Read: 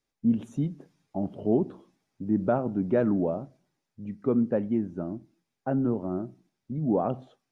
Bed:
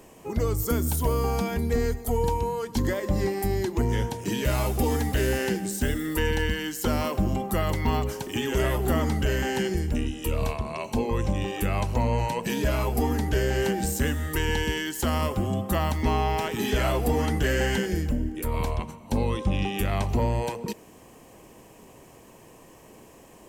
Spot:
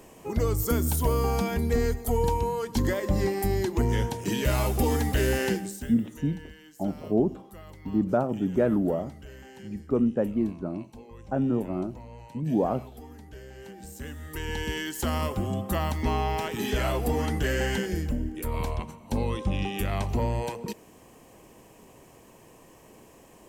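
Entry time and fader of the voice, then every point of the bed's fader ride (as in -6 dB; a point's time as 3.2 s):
5.65 s, +0.5 dB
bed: 5.54 s 0 dB
6.07 s -20.5 dB
13.57 s -20.5 dB
14.8 s -2.5 dB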